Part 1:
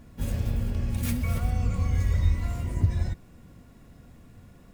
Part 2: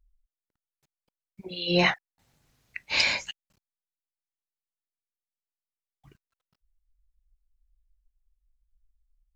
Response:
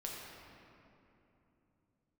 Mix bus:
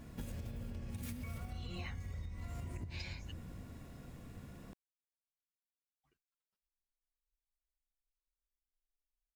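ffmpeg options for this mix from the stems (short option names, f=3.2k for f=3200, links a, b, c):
-filter_complex "[0:a]bandreject=f=54.95:t=h:w=4,bandreject=f=109.9:t=h:w=4,bandreject=f=164.85:t=h:w=4,bandreject=f=219.8:t=h:w=4,bandreject=f=274.75:t=h:w=4,bandreject=f=329.7:t=h:w=4,bandreject=f=384.65:t=h:w=4,bandreject=f=439.6:t=h:w=4,bandreject=f=494.55:t=h:w=4,bandreject=f=549.5:t=h:w=4,bandreject=f=604.45:t=h:w=4,bandreject=f=659.4:t=h:w=4,bandreject=f=714.35:t=h:w=4,bandreject=f=769.3:t=h:w=4,bandreject=f=824.25:t=h:w=4,bandreject=f=879.2:t=h:w=4,bandreject=f=934.15:t=h:w=4,bandreject=f=989.1:t=h:w=4,bandreject=f=1.04405k:t=h:w=4,bandreject=f=1.099k:t=h:w=4,bandreject=f=1.15395k:t=h:w=4,bandreject=f=1.2089k:t=h:w=4,bandreject=f=1.26385k:t=h:w=4,bandreject=f=1.3188k:t=h:w=4,bandreject=f=1.37375k:t=h:w=4,bandreject=f=1.4287k:t=h:w=4,bandreject=f=1.48365k:t=h:w=4,bandreject=f=1.5386k:t=h:w=4,bandreject=f=1.59355k:t=h:w=4,bandreject=f=1.6485k:t=h:w=4,bandreject=f=1.70345k:t=h:w=4,bandreject=f=1.7584k:t=h:w=4,acompressor=threshold=-33dB:ratio=6,volume=-1.5dB,asplit=2[a][b];[b]volume=-7dB[c];[1:a]equalizer=f=130:w=0.98:g=-11.5,acrusher=bits=8:mode=log:mix=0:aa=0.000001,asplit=2[d][e];[e]adelay=8,afreqshift=1.1[f];[d][f]amix=inputs=2:normalize=1,volume=-15.5dB[g];[2:a]atrim=start_sample=2205[h];[c][h]afir=irnorm=-1:irlink=0[i];[a][g][i]amix=inputs=3:normalize=0,lowshelf=f=68:g=-6,acompressor=threshold=-40dB:ratio=6"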